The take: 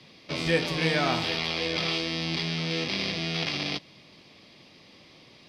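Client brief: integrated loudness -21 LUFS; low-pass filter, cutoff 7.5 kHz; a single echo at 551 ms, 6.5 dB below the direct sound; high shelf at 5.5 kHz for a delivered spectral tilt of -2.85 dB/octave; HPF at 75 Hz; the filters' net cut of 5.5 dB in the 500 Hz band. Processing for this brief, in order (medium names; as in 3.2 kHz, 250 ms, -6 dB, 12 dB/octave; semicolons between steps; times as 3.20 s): high-pass 75 Hz; low-pass 7.5 kHz; peaking EQ 500 Hz -6.5 dB; treble shelf 5.5 kHz -8 dB; delay 551 ms -6.5 dB; trim +8.5 dB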